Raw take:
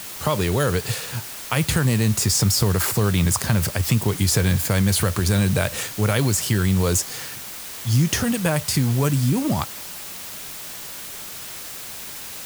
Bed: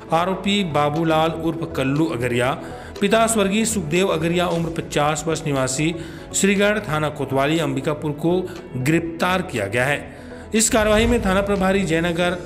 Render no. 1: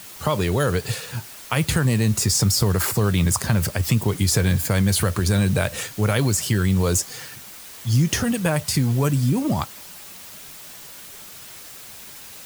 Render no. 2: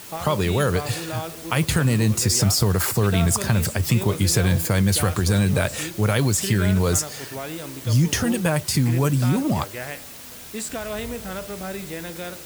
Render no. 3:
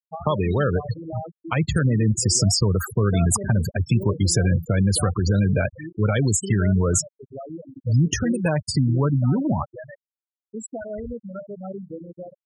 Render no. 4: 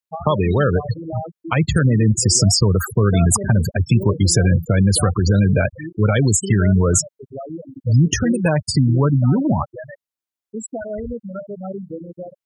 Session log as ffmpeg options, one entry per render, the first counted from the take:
-af "afftdn=nr=6:nf=-35"
-filter_complex "[1:a]volume=-14dB[a];[0:a][a]amix=inputs=2:normalize=0"
-af "afftfilt=real='re*gte(hypot(re,im),0.126)':imag='im*gte(hypot(re,im),0.126)':win_size=1024:overlap=0.75,adynamicequalizer=threshold=0.0112:dfrequency=5800:dqfactor=0.7:tfrequency=5800:tqfactor=0.7:attack=5:release=100:ratio=0.375:range=2:mode=boostabove:tftype=highshelf"
-af "volume=4.5dB"

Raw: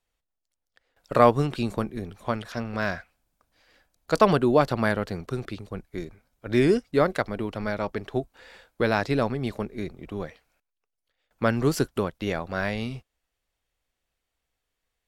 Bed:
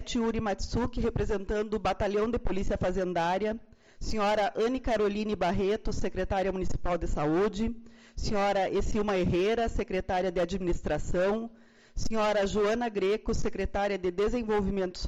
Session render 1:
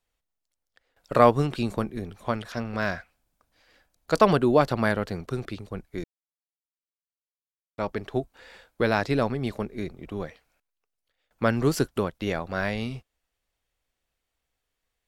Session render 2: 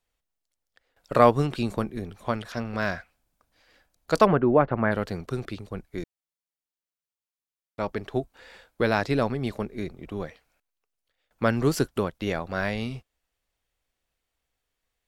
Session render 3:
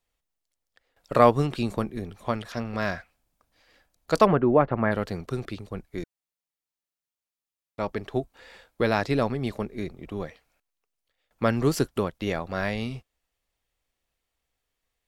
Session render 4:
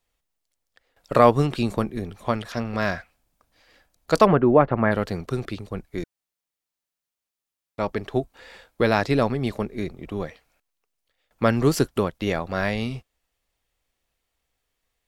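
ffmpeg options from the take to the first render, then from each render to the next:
-filter_complex "[0:a]asplit=3[a][b][c];[a]atrim=end=6.04,asetpts=PTS-STARTPTS,afade=t=out:st=6.036:d=0.004:c=hsin[d];[b]atrim=start=6.04:end=7.78,asetpts=PTS-STARTPTS,volume=0[e];[c]atrim=start=7.78,asetpts=PTS-STARTPTS,afade=t=in:d=0.004:c=hsin[f];[d][e][f]concat=n=3:v=0:a=1"
-filter_complex "[0:a]asplit=3[a][b][c];[a]afade=t=out:st=4.25:d=0.02[d];[b]lowpass=f=2.1k:w=0.5412,lowpass=f=2.1k:w=1.3066,afade=t=in:st=4.25:d=0.02,afade=t=out:st=4.91:d=0.02[e];[c]afade=t=in:st=4.91:d=0.02[f];[d][e][f]amix=inputs=3:normalize=0"
-af "bandreject=f=1.5k:w=20"
-af "volume=3.5dB,alimiter=limit=-2dB:level=0:latency=1"

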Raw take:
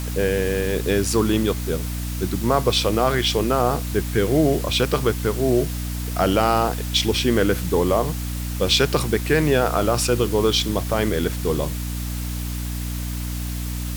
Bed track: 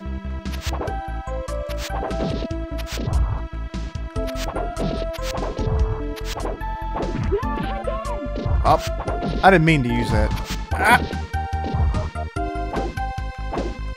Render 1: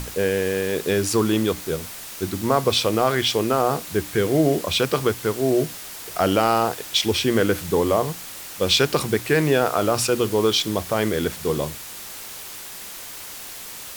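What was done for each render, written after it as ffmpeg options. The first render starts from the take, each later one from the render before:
-af "bandreject=f=60:t=h:w=6,bandreject=f=120:t=h:w=6,bandreject=f=180:t=h:w=6,bandreject=f=240:t=h:w=6,bandreject=f=300:t=h:w=6"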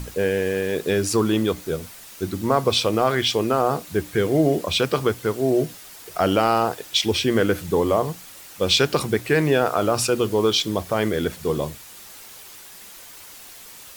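-af "afftdn=nr=7:nf=-37"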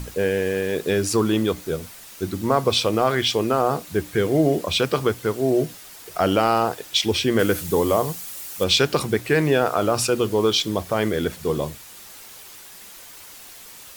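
-filter_complex "[0:a]asettb=1/sr,asplit=3[a][b][c];[a]atrim=end=7.394[d];[b]atrim=start=7.39:end=8.64,asetpts=PTS-STARTPTS,afade=t=in:d=0.004:c=qsin,afade=t=out:st=1.246:d=0.004:c=qsin,highshelf=f=5.8k:g=10[e];[c]atrim=start=8.636[f];[d][e]acrossfade=d=0.004:c1=hsin:c2=qsin[g];[g][f]acrossfade=d=0.004:c1=qsin:c2=hsin"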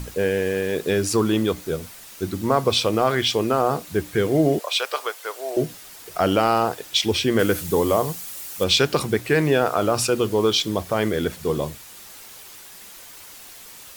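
-filter_complex "[0:a]asettb=1/sr,asplit=3[a][b][c];[a]atrim=end=4.594[d];[b]atrim=start=4.59:end=5.57,asetpts=PTS-STARTPTS,afade=t=in:d=0.004:c=qsin,afade=t=out:st=0.976:d=0.004:c=qsin,highpass=f=580:w=0.5412,highpass=f=580:w=1.3066[e];[c]atrim=start=5.566[f];[d][e]acrossfade=d=0.004:c1=hsin:c2=qsin[g];[g][f]acrossfade=d=0.004:c1=qsin:c2=hsin"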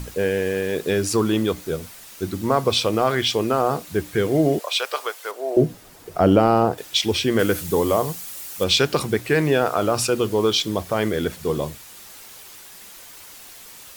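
-filter_complex "[0:a]asettb=1/sr,asplit=3[a][b][c];[a]atrim=end=5.314[d];[b]atrim=start=5.31:end=6.78,asetpts=PTS-STARTPTS,afade=t=in:d=0.004:c=qsin,afade=t=out:st=1.466:d=0.004:c=qsin,tiltshelf=f=970:g=7.5[e];[c]atrim=start=6.776[f];[d][e]acrossfade=d=0.004:c1=hsin:c2=qsin[g];[g][f]acrossfade=d=0.004:c1=qsin:c2=hsin"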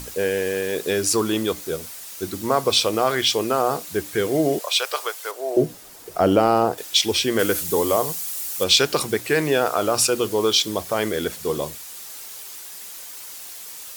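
-af "bass=f=250:g=-7,treble=f=4k:g=6"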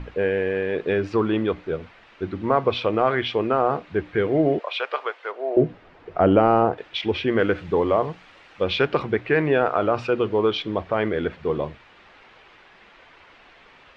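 -af "lowpass=f=2.6k:w=0.5412,lowpass=f=2.6k:w=1.3066,lowshelf=f=99:g=6.5"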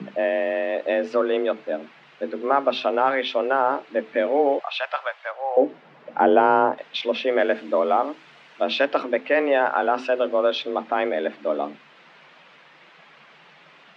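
-af "afreqshift=140"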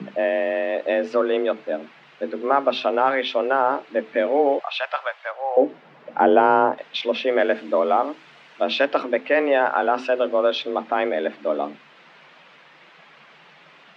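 -af "volume=1dB"

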